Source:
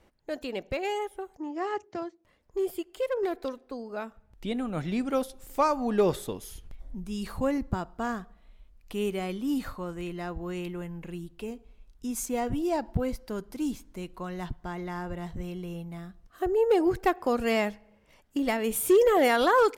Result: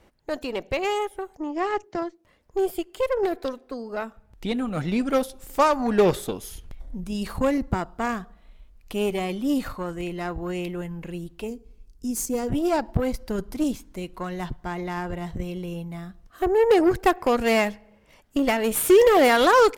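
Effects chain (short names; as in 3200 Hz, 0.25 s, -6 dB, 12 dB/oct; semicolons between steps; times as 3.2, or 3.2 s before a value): 13.2–13.64 low shelf 150 Hz +8.5 dB; added harmonics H 6 -20 dB, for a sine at -14.5 dBFS; 11.48–12.49 spectral gain 500–4200 Hz -9 dB; gain +5 dB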